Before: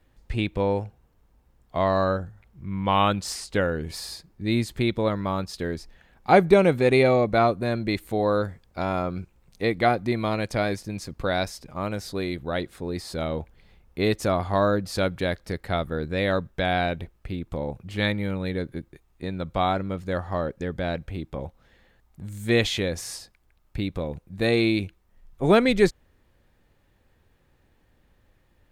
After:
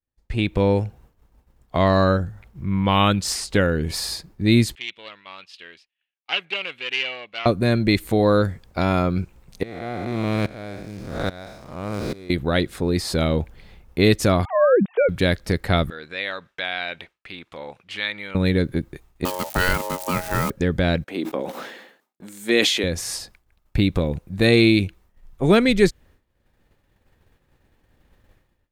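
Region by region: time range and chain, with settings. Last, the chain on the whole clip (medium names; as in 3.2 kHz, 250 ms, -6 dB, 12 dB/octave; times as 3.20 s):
4.75–7.46 s: self-modulated delay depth 0.18 ms + band-pass filter 2.8 kHz, Q 5.2
9.63–12.30 s: spectral blur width 265 ms + hysteresis with a dead band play -42 dBFS + sawtooth tremolo in dB swelling 1.2 Hz, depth 20 dB
14.45–15.09 s: formants replaced by sine waves + de-esser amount 95% + tilt shelf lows +6 dB, about 750 Hz
15.90–18.35 s: compression 5:1, threshold -25 dBFS + band-pass filter 2.7 kHz, Q 0.9
19.25–20.50 s: zero-crossing glitches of -25 dBFS + ring modulator 730 Hz
21.04–22.84 s: high-pass 250 Hz 24 dB/octave + gate -53 dBFS, range -15 dB + decay stretcher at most 54 dB/s
whole clip: level rider gain up to 10.5 dB; expander -44 dBFS; dynamic bell 810 Hz, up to -7 dB, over -28 dBFS, Q 0.82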